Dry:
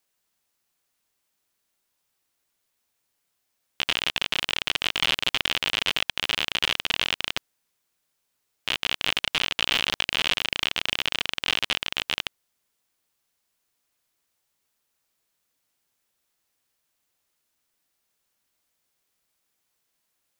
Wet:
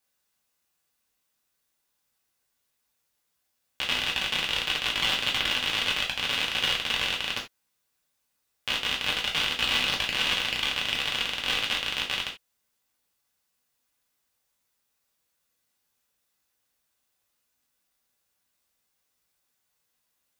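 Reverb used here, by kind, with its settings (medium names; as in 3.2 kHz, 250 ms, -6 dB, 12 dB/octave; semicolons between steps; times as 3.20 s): gated-style reverb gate 110 ms falling, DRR -2.5 dB; trim -5 dB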